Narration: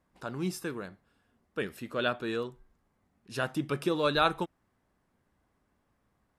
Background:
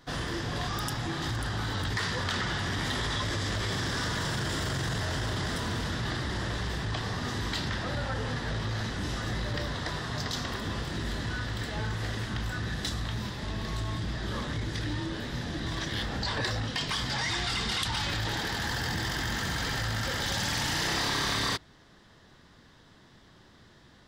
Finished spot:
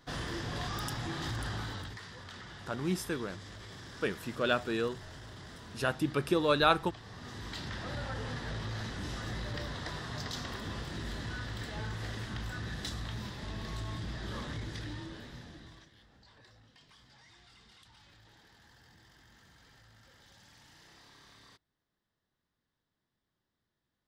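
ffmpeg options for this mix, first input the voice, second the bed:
-filter_complex "[0:a]adelay=2450,volume=1.06[s0];[1:a]volume=2.11,afade=t=out:st=1.51:d=0.49:silence=0.237137,afade=t=in:st=7.03:d=0.95:silence=0.281838,afade=t=out:st=14.5:d=1.41:silence=0.0668344[s1];[s0][s1]amix=inputs=2:normalize=0"

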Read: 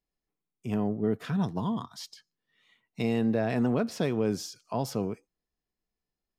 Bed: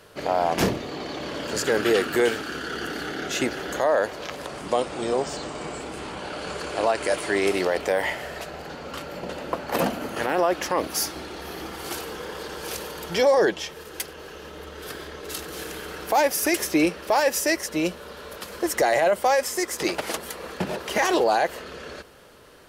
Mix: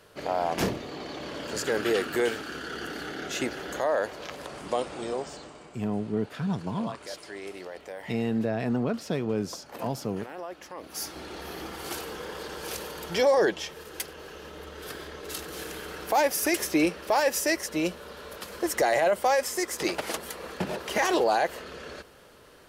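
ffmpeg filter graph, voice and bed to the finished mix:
-filter_complex "[0:a]adelay=5100,volume=0.891[s0];[1:a]volume=2.82,afade=t=out:st=4.87:d=0.83:silence=0.251189,afade=t=in:st=10.8:d=0.54:silence=0.199526[s1];[s0][s1]amix=inputs=2:normalize=0"

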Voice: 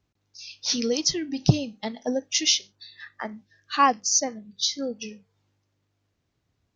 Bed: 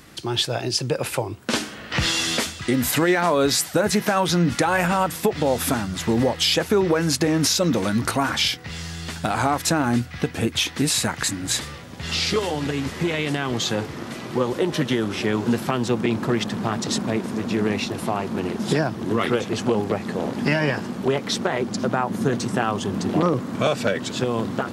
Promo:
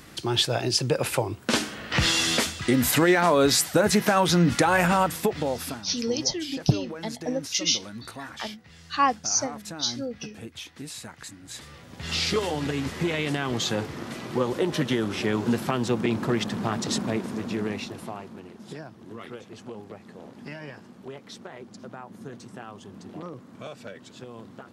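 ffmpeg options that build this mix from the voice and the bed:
-filter_complex "[0:a]adelay=5200,volume=0.75[s0];[1:a]volume=5.01,afade=t=out:st=4.95:d=0.89:silence=0.141254,afade=t=in:st=11.52:d=0.64:silence=0.188365,afade=t=out:st=17:d=1.44:silence=0.16788[s1];[s0][s1]amix=inputs=2:normalize=0"

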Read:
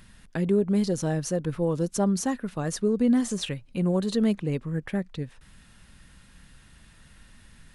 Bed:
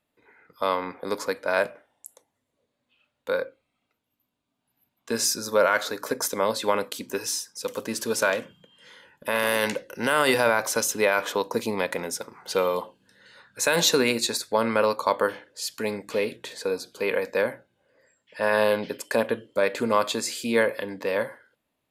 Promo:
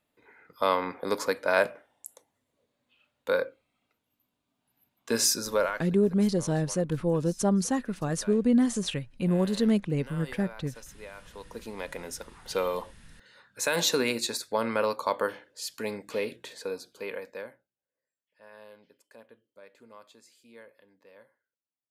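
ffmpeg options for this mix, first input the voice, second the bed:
-filter_complex "[0:a]adelay=5450,volume=0.944[s0];[1:a]volume=8.41,afade=t=out:st=5.36:d=0.48:silence=0.0668344,afade=t=in:st=11.29:d=1.17:silence=0.11885,afade=t=out:st=16.38:d=1.36:silence=0.0630957[s1];[s0][s1]amix=inputs=2:normalize=0"

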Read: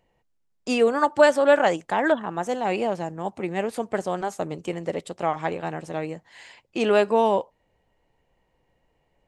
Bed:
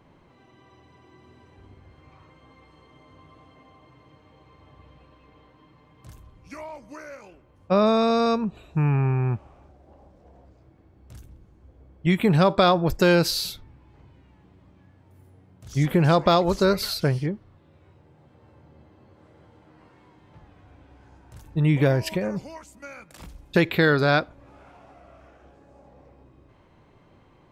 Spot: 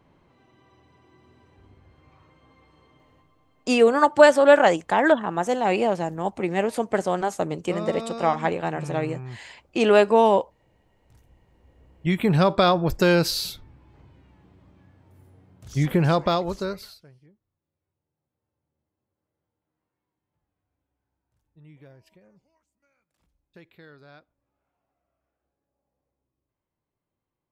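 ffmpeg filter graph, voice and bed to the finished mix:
-filter_complex "[0:a]adelay=3000,volume=1.41[s0];[1:a]volume=2.66,afade=t=out:st=2.87:d=0.46:silence=0.354813,afade=t=in:st=11.21:d=1.17:silence=0.237137,afade=t=out:st=15.95:d=1.08:silence=0.0334965[s1];[s0][s1]amix=inputs=2:normalize=0"

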